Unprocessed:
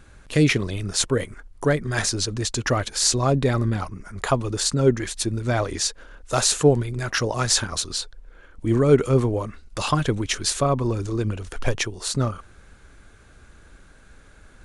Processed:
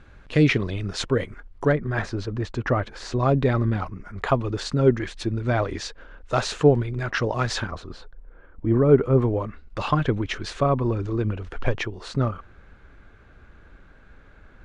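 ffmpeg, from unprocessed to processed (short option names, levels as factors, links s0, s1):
-af "asetnsamples=n=441:p=0,asendcmd='1.72 lowpass f 1800;3.19 lowpass f 3000;7.71 lowpass f 1400;9.22 lowpass f 2600',lowpass=3500"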